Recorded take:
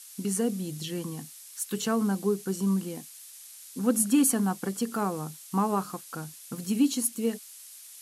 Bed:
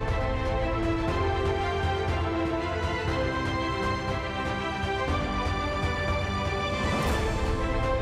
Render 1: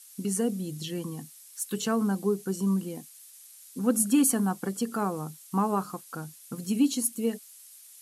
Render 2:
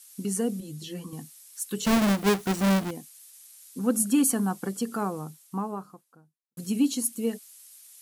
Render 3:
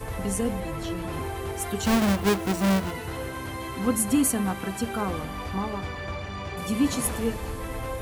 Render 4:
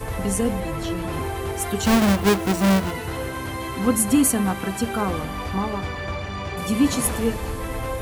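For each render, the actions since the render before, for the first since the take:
denoiser 6 dB, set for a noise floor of -48 dBFS
0.6–1.13 ensemble effect; 1.85–2.91 half-waves squared off; 4.84–6.57 studio fade out
add bed -6 dB
gain +4.5 dB

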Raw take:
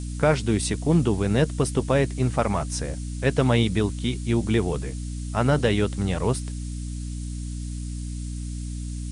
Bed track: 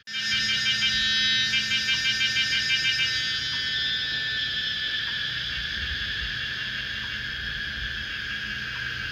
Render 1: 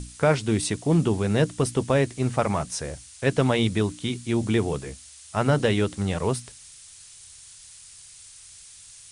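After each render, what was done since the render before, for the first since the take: notches 60/120/180/240/300 Hz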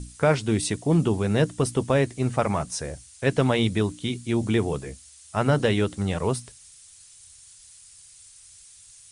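denoiser 6 dB, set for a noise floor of -48 dBFS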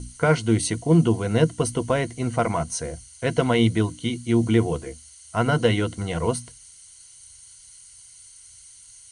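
ripple EQ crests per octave 1.9, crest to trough 11 dB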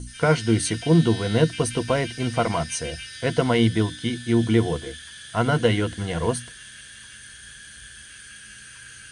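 add bed track -14 dB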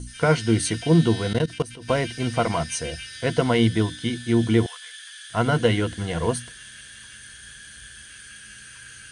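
1.33–1.89 level quantiser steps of 20 dB; 4.66–5.3 HPF 1200 Hz 24 dB/oct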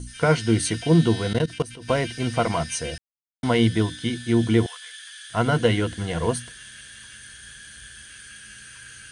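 2.98–3.43 mute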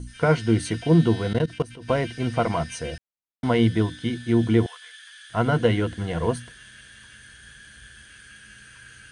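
high shelf 3400 Hz -10 dB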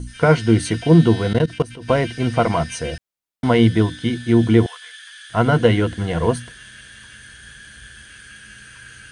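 gain +5.5 dB

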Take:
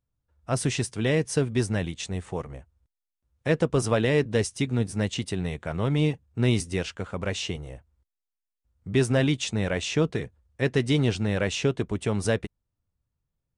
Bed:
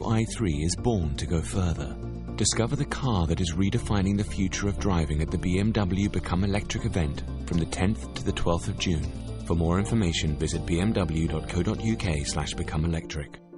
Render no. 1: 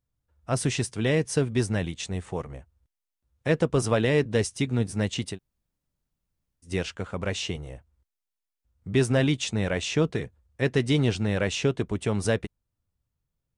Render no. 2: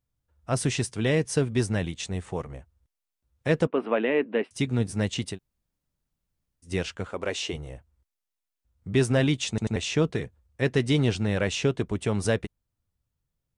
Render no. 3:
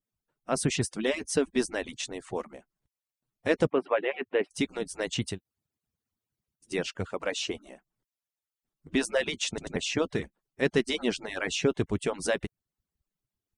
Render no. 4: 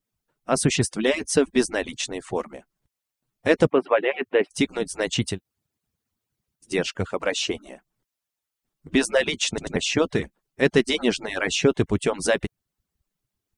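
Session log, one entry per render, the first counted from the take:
5.34–6.67 room tone, crossfade 0.10 s
3.67–4.51 elliptic band-pass 240–2700 Hz; 7.09–7.53 resonant low shelf 230 Hz -9.5 dB, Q 1.5; 9.49 stutter in place 0.09 s, 3 plays
median-filter separation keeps percussive
gain +6.5 dB

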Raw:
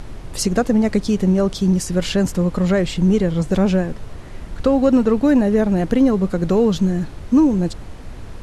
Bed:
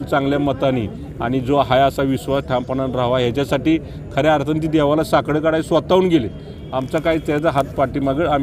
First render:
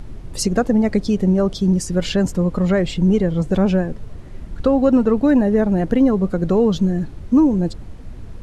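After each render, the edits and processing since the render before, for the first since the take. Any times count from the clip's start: denoiser 8 dB, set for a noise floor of -34 dBFS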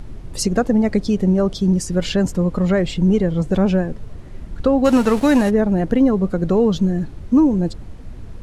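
4.84–5.49 spectral whitening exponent 0.6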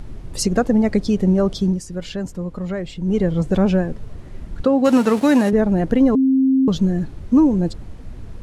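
1.62–3.22 dip -8.5 dB, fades 0.18 s; 4.64–5.53 Chebyshev high-pass 180 Hz; 6.15–6.68 bleep 265 Hz -12 dBFS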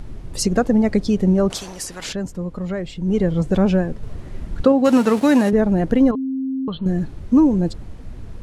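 1.5–2.13 spectral compressor 4:1; 4.03–4.72 gain +3 dB; 6.11–6.86 rippled Chebyshev low-pass 4300 Hz, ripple 9 dB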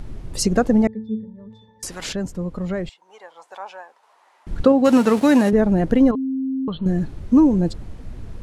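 0.87–1.83 octave resonator A, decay 0.4 s; 2.89–4.47 ladder high-pass 810 Hz, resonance 65%; 6.35–6.8 air absorption 95 m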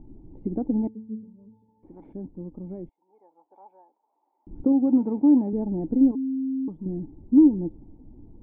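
vocal tract filter u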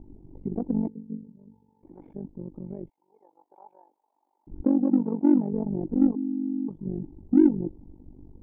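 in parallel at -9 dB: soft clip -20 dBFS, distortion -8 dB; on the sum: AM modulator 48 Hz, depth 80%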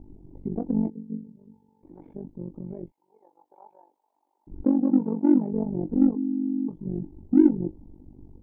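doubler 23 ms -10 dB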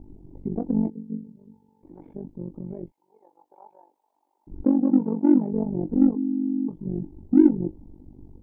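gain +1.5 dB

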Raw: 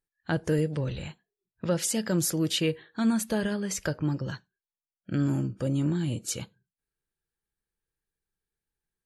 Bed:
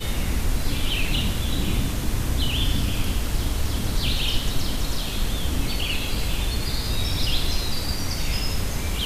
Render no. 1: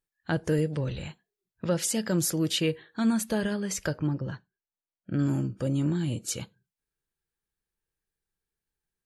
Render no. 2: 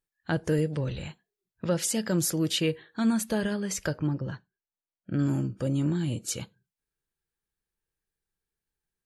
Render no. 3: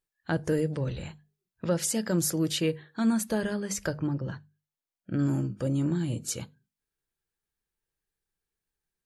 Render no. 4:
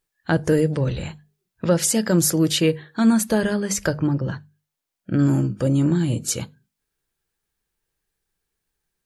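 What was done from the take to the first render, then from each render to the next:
4.07–5.19 LPF 1400 Hz 6 dB/oct
nothing audible
notches 50/100/150/200/250 Hz; dynamic EQ 3000 Hz, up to -4 dB, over -51 dBFS, Q 1.4
gain +8.5 dB

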